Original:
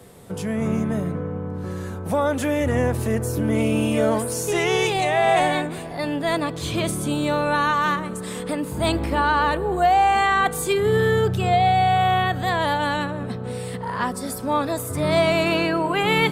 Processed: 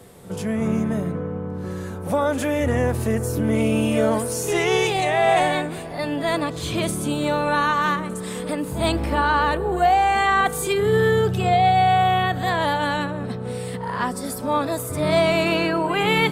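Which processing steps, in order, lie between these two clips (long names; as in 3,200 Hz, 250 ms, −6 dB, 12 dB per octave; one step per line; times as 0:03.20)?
backwards echo 59 ms −13.5 dB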